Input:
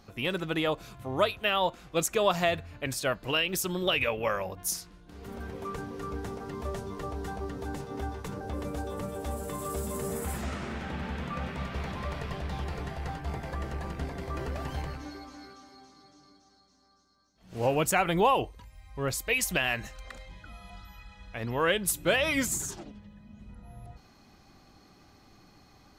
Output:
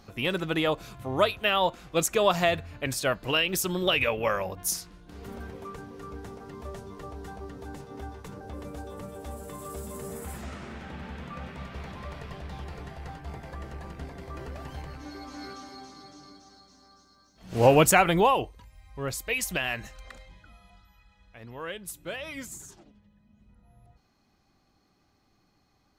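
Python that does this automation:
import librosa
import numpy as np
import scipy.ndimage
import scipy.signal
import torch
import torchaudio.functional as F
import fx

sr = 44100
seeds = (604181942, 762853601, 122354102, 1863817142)

y = fx.gain(x, sr, db=fx.line((5.18, 2.5), (5.76, -4.5), (14.86, -4.5), (15.49, 8.5), (17.78, 8.5), (18.51, -1.5), (20.1, -1.5), (20.88, -11.0)))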